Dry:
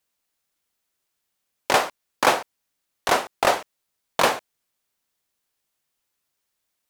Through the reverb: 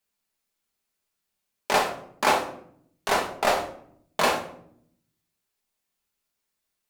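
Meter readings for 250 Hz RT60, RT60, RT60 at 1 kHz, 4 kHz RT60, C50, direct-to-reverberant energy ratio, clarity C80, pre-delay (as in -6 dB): 1.1 s, 0.65 s, 0.60 s, 0.40 s, 8.5 dB, 0.0 dB, 13.0 dB, 5 ms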